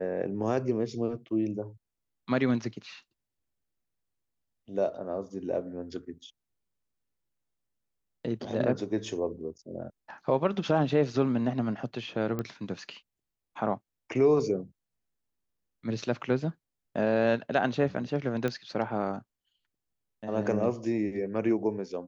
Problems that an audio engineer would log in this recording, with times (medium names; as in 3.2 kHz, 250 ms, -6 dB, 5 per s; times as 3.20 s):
12.39 s: pop -20 dBFS
18.48 s: pop -18 dBFS